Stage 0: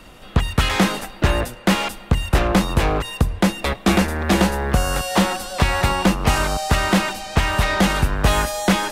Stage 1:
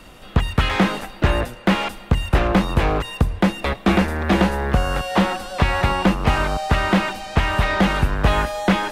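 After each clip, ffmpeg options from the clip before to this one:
ffmpeg -i in.wav -filter_complex "[0:a]acrossover=split=3700[link_01][link_02];[link_02]acompressor=threshold=-41dB:ratio=4:attack=1:release=60[link_03];[link_01][link_03]amix=inputs=2:normalize=0" out.wav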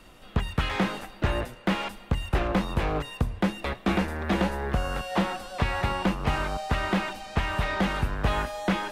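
ffmpeg -i in.wav -af "flanger=delay=2.3:depth=7.6:regen=83:speed=0.43:shape=triangular,volume=-3.5dB" out.wav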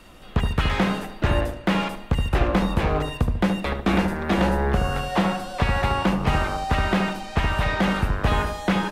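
ffmpeg -i in.wav -filter_complex "[0:a]asplit=2[link_01][link_02];[link_02]adelay=72,lowpass=frequency=810:poles=1,volume=-3dB,asplit=2[link_03][link_04];[link_04]adelay=72,lowpass=frequency=810:poles=1,volume=0.41,asplit=2[link_05][link_06];[link_06]adelay=72,lowpass=frequency=810:poles=1,volume=0.41,asplit=2[link_07][link_08];[link_08]adelay=72,lowpass=frequency=810:poles=1,volume=0.41,asplit=2[link_09][link_10];[link_10]adelay=72,lowpass=frequency=810:poles=1,volume=0.41[link_11];[link_01][link_03][link_05][link_07][link_09][link_11]amix=inputs=6:normalize=0,volume=3.5dB" out.wav

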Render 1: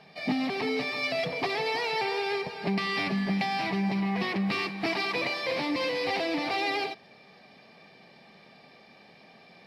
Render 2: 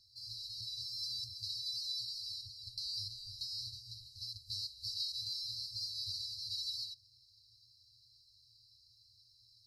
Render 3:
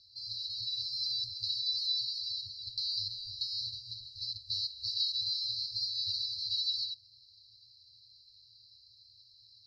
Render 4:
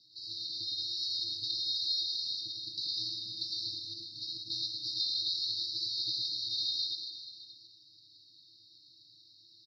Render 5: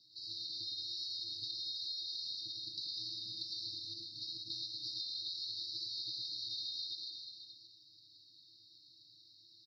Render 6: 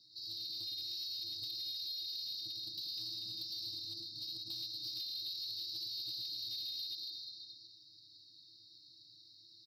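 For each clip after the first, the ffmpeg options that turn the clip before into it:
ffmpeg -i in.wav -af "afftfilt=real='re*(1-between(b*sr/4096,120,3900))':imag='im*(1-between(b*sr/4096,120,3900))':win_size=4096:overlap=0.75" out.wav
ffmpeg -i in.wav -af "lowpass=frequency=4000:width_type=q:width=2.8" out.wav
ffmpeg -i in.wav -filter_complex "[0:a]aeval=exprs='val(0)*sin(2*PI*220*n/s)':channel_layout=same,asplit=2[link_01][link_02];[link_02]aecho=0:1:110|242|400.4|590.5|818.6:0.631|0.398|0.251|0.158|0.1[link_03];[link_01][link_03]amix=inputs=2:normalize=0,volume=1dB" out.wav
ffmpeg -i in.wav -af "acompressor=threshold=-36dB:ratio=6,volume=-2.5dB" out.wav
ffmpeg -i in.wav -af "asoftclip=type=tanh:threshold=-37.5dB,volume=2dB" out.wav

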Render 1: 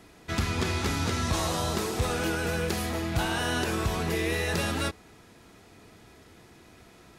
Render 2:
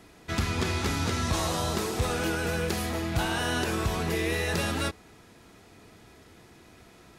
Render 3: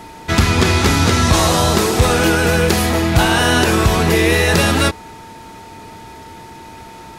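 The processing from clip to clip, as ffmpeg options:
ffmpeg -i in.wav -af anull out.wav
ffmpeg -i in.wav -af "acontrast=57,aeval=exprs='val(0)+0.00562*sin(2*PI*900*n/s)':channel_layout=same,volume=8.5dB" out.wav

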